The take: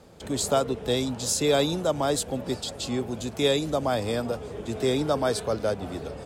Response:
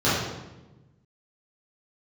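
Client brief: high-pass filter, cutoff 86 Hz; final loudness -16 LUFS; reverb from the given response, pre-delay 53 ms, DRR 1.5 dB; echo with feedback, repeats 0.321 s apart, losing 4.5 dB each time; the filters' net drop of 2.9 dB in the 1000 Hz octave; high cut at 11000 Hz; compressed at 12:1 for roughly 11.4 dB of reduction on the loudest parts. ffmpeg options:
-filter_complex "[0:a]highpass=86,lowpass=11k,equalizer=f=1k:t=o:g=-4.5,acompressor=threshold=-30dB:ratio=12,aecho=1:1:321|642|963|1284|1605|1926|2247|2568|2889:0.596|0.357|0.214|0.129|0.0772|0.0463|0.0278|0.0167|0.01,asplit=2[a][b];[1:a]atrim=start_sample=2205,adelay=53[c];[b][c]afir=irnorm=-1:irlink=0,volume=-20dB[d];[a][d]amix=inputs=2:normalize=0,volume=13dB"

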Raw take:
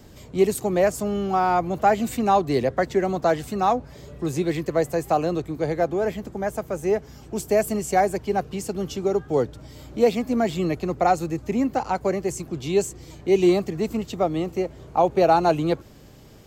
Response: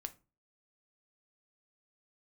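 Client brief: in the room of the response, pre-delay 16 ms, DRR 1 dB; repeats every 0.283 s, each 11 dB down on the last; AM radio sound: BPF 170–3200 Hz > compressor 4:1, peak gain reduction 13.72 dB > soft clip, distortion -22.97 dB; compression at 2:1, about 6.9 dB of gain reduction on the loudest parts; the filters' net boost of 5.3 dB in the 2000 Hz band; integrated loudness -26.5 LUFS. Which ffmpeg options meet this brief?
-filter_complex "[0:a]equalizer=f=2k:t=o:g=7.5,acompressor=threshold=-25dB:ratio=2,aecho=1:1:283|566|849:0.282|0.0789|0.0221,asplit=2[a][b];[1:a]atrim=start_sample=2205,adelay=16[c];[b][c]afir=irnorm=-1:irlink=0,volume=2.5dB[d];[a][d]amix=inputs=2:normalize=0,highpass=170,lowpass=3.2k,acompressor=threshold=-32dB:ratio=4,asoftclip=threshold=-23.5dB,volume=9dB"

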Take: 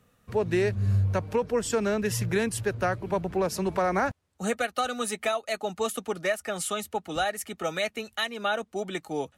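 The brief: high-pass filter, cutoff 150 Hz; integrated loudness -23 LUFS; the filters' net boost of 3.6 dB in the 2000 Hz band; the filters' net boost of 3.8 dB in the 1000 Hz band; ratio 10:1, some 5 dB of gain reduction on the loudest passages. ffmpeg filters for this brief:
-af "highpass=150,equalizer=f=1k:t=o:g=4.5,equalizer=f=2k:t=o:g=3,acompressor=threshold=-24dB:ratio=10,volume=7.5dB"

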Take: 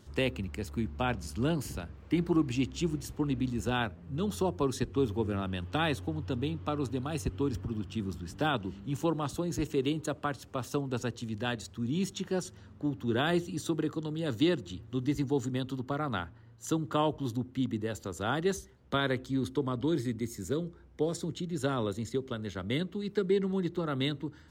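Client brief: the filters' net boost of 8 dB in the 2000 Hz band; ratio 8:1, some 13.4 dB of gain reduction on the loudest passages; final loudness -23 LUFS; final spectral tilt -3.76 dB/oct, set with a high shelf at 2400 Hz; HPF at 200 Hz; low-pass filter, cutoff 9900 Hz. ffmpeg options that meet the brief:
-af "highpass=200,lowpass=9.9k,equalizer=f=2k:t=o:g=8.5,highshelf=f=2.4k:g=5,acompressor=threshold=-36dB:ratio=8,volume=18dB"

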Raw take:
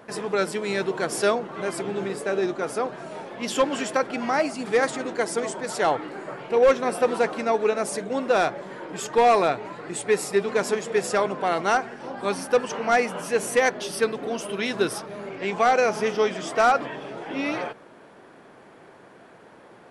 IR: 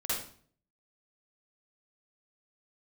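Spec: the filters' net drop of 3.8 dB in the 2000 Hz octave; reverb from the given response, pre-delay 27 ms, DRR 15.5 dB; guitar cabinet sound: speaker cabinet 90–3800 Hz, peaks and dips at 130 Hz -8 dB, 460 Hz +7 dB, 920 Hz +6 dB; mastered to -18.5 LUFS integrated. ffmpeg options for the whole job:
-filter_complex "[0:a]equalizer=f=2k:t=o:g=-5.5,asplit=2[a][b];[1:a]atrim=start_sample=2205,adelay=27[c];[b][c]afir=irnorm=-1:irlink=0,volume=-21dB[d];[a][d]amix=inputs=2:normalize=0,highpass=90,equalizer=f=130:t=q:w=4:g=-8,equalizer=f=460:t=q:w=4:g=7,equalizer=f=920:t=q:w=4:g=6,lowpass=f=3.8k:w=0.5412,lowpass=f=3.8k:w=1.3066,volume=3dB"

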